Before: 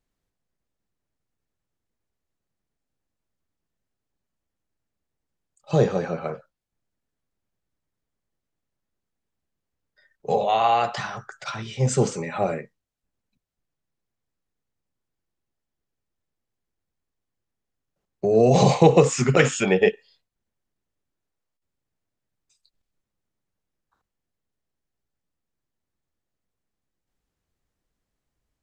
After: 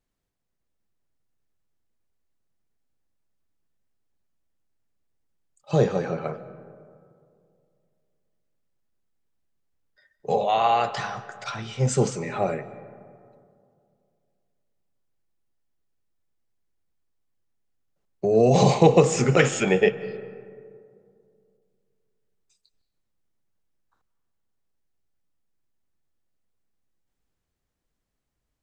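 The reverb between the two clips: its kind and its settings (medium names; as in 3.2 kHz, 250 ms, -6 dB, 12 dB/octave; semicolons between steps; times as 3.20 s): algorithmic reverb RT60 2.4 s, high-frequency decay 0.35×, pre-delay 115 ms, DRR 15.5 dB; trim -1 dB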